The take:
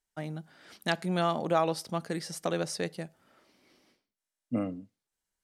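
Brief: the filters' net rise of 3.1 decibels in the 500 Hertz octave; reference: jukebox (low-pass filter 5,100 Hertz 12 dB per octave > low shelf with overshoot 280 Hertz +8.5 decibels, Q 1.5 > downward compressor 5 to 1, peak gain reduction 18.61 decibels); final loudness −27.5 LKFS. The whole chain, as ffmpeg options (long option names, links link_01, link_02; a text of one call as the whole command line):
ffmpeg -i in.wav -af "lowpass=5100,lowshelf=frequency=280:width_type=q:width=1.5:gain=8.5,equalizer=frequency=500:width_type=o:gain=6,acompressor=threshold=-38dB:ratio=5,volume=14dB" out.wav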